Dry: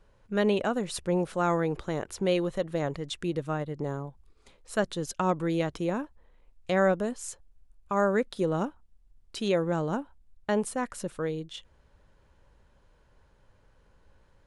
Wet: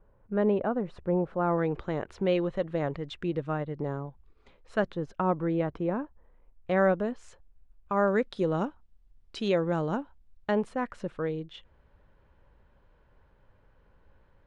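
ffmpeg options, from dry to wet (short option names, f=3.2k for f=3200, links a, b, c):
-af "asetnsamples=n=441:p=0,asendcmd='1.58 lowpass f 2800;4.92 lowpass f 1600;6.71 lowpass f 2700;8.08 lowpass f 4600;10.51 lowpass f 2700',lowpass=1.2k"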